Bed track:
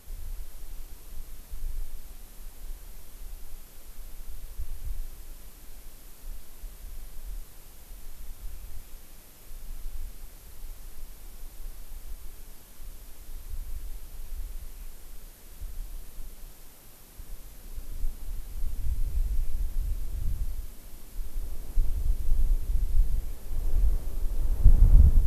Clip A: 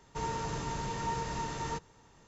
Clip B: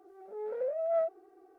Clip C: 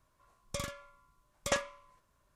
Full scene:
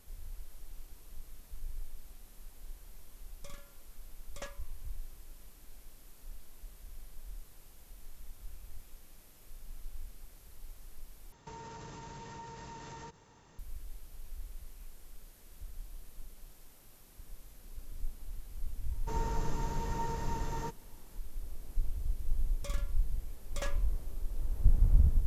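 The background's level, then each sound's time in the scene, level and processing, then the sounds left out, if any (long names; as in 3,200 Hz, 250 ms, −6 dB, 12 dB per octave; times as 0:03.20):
bed track −7.5 dB
0:02.90: mix in C −14.5 dB
0:11.32: overwrite with A −0.5 dB + downward compressor 16 to 1, threshold −42 dBFS
0:18.92: mix in A −1.5 dB + parametric band 3,300 Hz −6.5 dB 2.5 octaves
0:22.10: mix in C −14.5 dB + leveller curve on the samples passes 2
not used: B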